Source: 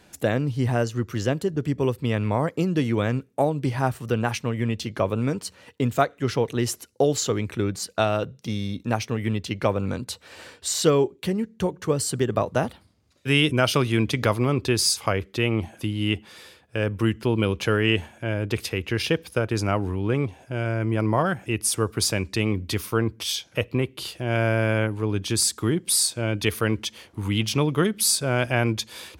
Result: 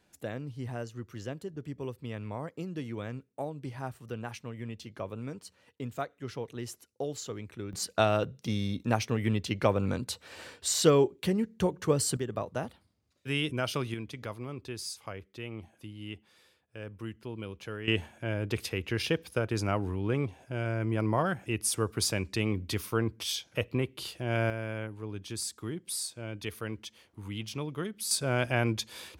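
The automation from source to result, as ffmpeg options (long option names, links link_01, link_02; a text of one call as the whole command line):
ffmpeg -i in.wav -af "asetnsamples=nb_out_samples=441:pad=0,asendcmd='7.73 volume volume -3dB;12.17 volume volume -11dB;13.94 volume volume -17.5dB;17.88 volume volume -6dB;24.5 volume volume -14dB;28.11 volume volume -5.5dB',volume=-14.5dB" out.wav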